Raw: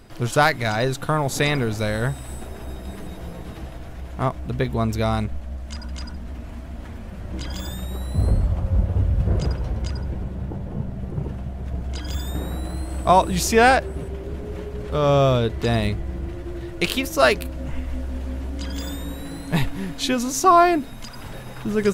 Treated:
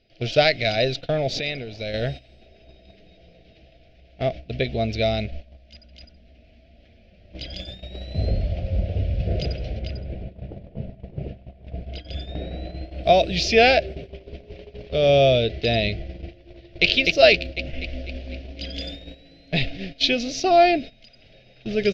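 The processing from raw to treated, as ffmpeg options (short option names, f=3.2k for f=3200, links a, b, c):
-filter_complex "[0:a]asettb=1/sr,asplit=3[a][b][c];[a]atrim=end=1.394[d];[b]atrim=start=1.39:end=1.94,asetpts=PTS-STARTPTS,afade=t=in:d=0.004:c=qsin,afade=t=out:st=0.546:d=0.004:c=qsin,acompressor=threshold=-24dB:ratio=10:attack=3.2:release=140:knee=1:detection=peak[e];[c]atrim=start=1.936[f];[d][e]acrossfade=d=0.004:c1=hsin:c2=qsin[g];[g][f]acrossfade=d=0.004:c1=qsin:c2=hsin,asettb=1/sr,asplit=3[h][i][j];[h]atrim=end=9.794[k];[i]atrim=start=9.79:end=13.04,asetpts=PTS-STARTPTS,afade=t=in:d=0.004:c=qsin,afade=t=out:st=3.246:d=0.004:c=qsin,lowpass=f=2.1k:p=1[l];[j]atrim=start=13.036[m];[k][l]acrossfade=d=0.004:c1=hsin:c2=qsin[n];[n][m]acrossfade=d=0.004:c1=qsin:c2=hsin,asplit=2[o][p];[p]afade=t=in:st=16.45:d=0.01,afade=t=out:st=16.86:d=0.01,aecho=0:1:250|500|750|1000|1250|1500|1750|2000|2250:0.749894|0.449937|0.269962|0.161977|0.0971863|0.0583118|0.0349871|0.0209922|0.0125953[q];[o][q]amix=inputs=2:normalize=0,firequalizer=gain_entry='entry(290,0);entry(660,9);entry(980,-24);entry(1400,-8);entry(2400,11);entry(9500,-14)':delay=0.05:min_phase=1,agate=range=-15dB:threshold=-27dB:ratio=16:detection=peak,highshelf=f=6.7k:t=q:w=3:g=-10.5,volume=-4dB"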